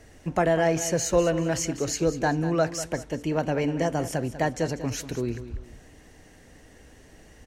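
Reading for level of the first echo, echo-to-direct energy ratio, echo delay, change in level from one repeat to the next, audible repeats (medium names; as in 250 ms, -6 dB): -13.0 dB, -12.5 dB, 194 ms, -9.5 dB, 2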